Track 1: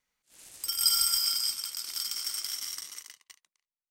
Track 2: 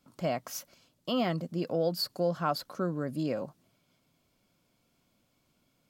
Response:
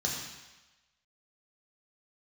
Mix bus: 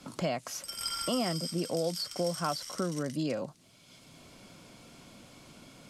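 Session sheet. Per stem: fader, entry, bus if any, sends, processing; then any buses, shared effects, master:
-17.0 dB, 0.00 s, no send, level rider gain up to 10 dB
-1.0 dB, 0.00 s, no send, none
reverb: none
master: low-pass 11 kHz 24 dB/octave; three bands compressed up and down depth 70%

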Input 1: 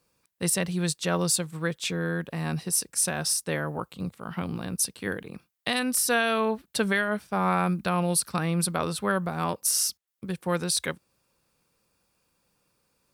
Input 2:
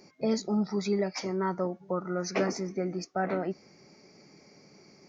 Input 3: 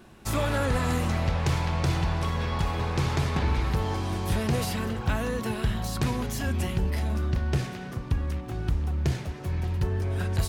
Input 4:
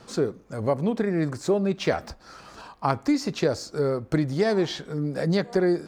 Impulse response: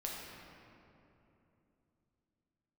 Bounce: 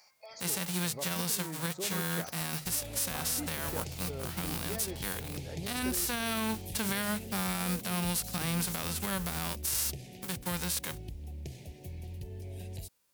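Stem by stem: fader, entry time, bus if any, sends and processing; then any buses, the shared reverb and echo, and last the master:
-5.0 dB, 0.00 s, no send, formants flattened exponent 0.3; hum notches 50/100/150 Hz
-0.5 dB, 0.00 s, send -13 dB, steep high-pass 690 Hz 36 dB/octave; peak limiter -31.5 dBFS, peak gain reduction 11 dB; random-step tremolo; auto duck -11 dB, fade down 0.25 s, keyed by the first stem
-10.5 dB, 2.40 s, no send, Chebyshev band-stop 690–2300 Hz, order 2; treble shelf 10 kHz +11.5 dB; compression, threshold -28 dBFS, peak gain reduction 7.5 dB
-18.5 dB, 0.30 s, no send, none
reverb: on, RT60 3.0 s, pre-delay 6 ms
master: treble shelf 6.9 kHz +4.5 dB; peak limiter -21 dBFS, peak gain reduction 9 dB

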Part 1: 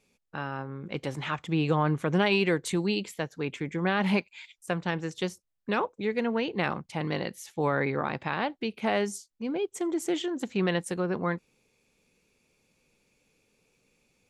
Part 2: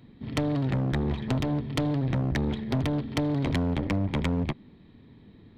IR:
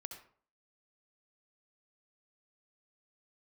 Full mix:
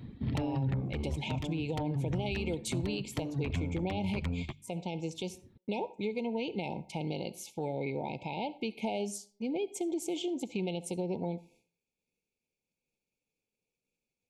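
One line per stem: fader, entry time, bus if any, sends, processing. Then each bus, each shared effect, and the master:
-3.0 dB, 0.00 s, send -6.5 dB, FFT band-reject 960–2100 Hz; expander -57 dBFS; compression, threshold -29 dBFS, peak gain reduction 9 dB
+2.0 dB, 0.00 s, no send, hum notches 50/100/150 Hz; reverb removal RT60 1.7 s; peaking EQ 83 Hz +10 dB 2.4 oct; auto duck -12 dB, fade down 0.90 s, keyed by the first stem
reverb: on, RT60 0.50 s, pre-delay 61 ms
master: peak limiter -24.5 dBFS, peak gain reduction 8 dB

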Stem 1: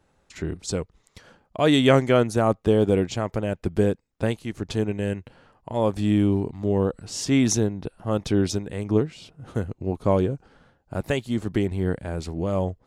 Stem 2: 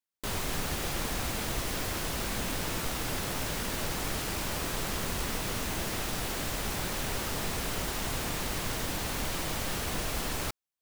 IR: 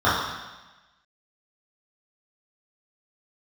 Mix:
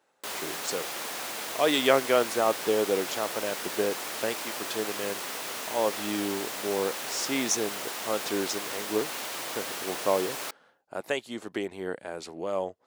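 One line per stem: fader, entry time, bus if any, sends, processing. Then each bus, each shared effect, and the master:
-1.5 dB, 0.00 s, no send, none
0.0 dB, 0.00 s, no send, none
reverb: none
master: high-pass 450 Hz 12 dB/octave

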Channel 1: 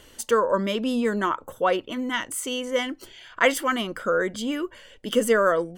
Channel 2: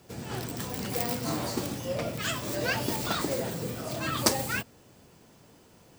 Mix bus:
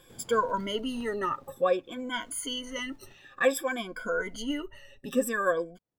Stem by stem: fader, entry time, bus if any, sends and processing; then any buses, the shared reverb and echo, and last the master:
-12.0 dB, 0.00 s, no send, drifting ripple filter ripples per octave 1.8, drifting -0.55 Hz, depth 24 dB; bass shelf 82 Hz +11.5 dB; comb 7.4 ms, depth 37%
3.03 s -11 dB -> 3.36 s -19 dB, 0.00 s, no send, sliding maximum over 17 samples; auto duck -19 dB, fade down 1.70 s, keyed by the first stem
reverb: none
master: none

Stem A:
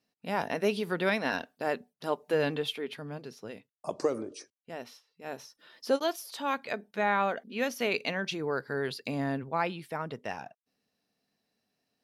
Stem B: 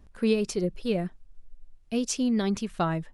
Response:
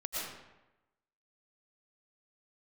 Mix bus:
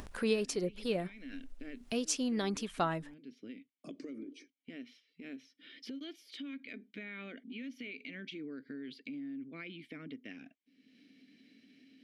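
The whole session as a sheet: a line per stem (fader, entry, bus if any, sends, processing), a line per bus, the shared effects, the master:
-7.5 dB, 0.00 s, no send, vowel filter i; peak limiter -39.5 dBFS, peak gain reduction 12 dB
-3.0 dB, 0.00 s, no send, bass shelf 250 Hz -11 dB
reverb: none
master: upward compressor, threshold -33 dBFS

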